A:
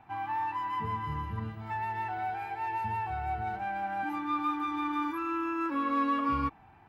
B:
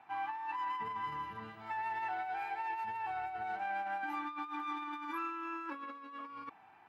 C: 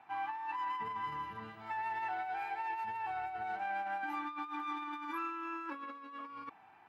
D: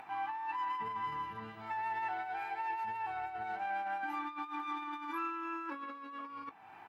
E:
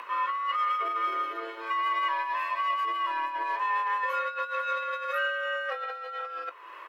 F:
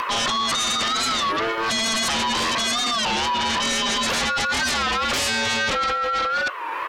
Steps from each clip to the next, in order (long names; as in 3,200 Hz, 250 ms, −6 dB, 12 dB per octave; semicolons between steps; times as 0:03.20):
compressor whose output falls as the input rises −34 dBFS, ratio −0.5; meter weighting curve A; level −3.5 dB
no processing that can be heard
upward compression, threshold −43 dBFS; double-tracking delay 18 ms −14 dB
frequency shifter +230 Hz; level +9 dB
sine wavefolder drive 15 dB, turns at −18 dBFS; wow of a warped record 33 1/3 rpm, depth 160 cents; level −1.5 dB